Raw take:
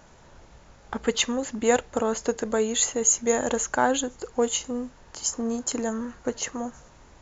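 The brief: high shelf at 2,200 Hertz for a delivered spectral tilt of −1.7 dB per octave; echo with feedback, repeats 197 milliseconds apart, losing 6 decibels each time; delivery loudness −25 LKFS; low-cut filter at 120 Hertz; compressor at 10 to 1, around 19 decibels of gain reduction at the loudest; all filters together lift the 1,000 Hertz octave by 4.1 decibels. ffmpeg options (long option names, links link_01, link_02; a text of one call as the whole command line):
ffmpeg -i in.wav -af "highpass=120,equalizer=frequency=1000:width_type=o:gain=4.5,highshelf=frequency=2200:gain=5,acompressor=threshold=-31dB:ratio=10,aecho=1:1:197|394|591|788|985|1182:0.501|0.251|0.125|0.0626|0.0313|0.0157,volume=9.5dB" out.wav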